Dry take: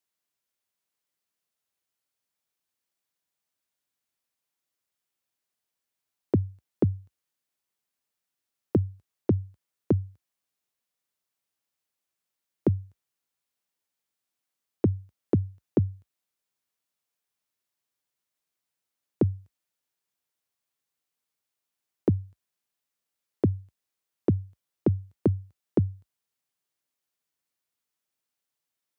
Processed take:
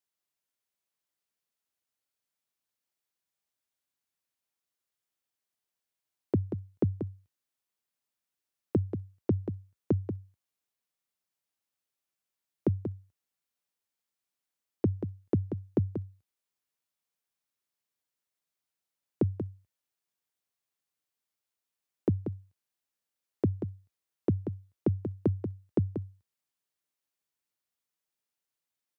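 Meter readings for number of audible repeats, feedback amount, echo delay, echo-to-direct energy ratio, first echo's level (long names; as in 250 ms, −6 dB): 1, repeats not evenly spaced, 185 ms, −8.5 dB, −8.5 dB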